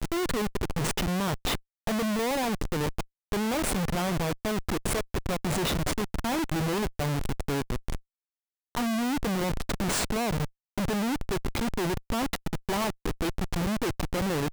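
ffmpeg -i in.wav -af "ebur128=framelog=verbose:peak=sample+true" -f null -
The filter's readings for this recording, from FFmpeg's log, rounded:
Integrated loudness:
  I:         -29.7 LUFS
  Threshold: -39.8 LUFS
Loudness range:
  LRA:         1.6 LU
  Threshold: -50.0 LUFS
  LRA low:   -30.9 LUFS
  LRA high:  -29.3 LUFS
Sample peak:
  Peak:      -21.0 dBFS
True peak:
  Peak:      -19.8 dBFS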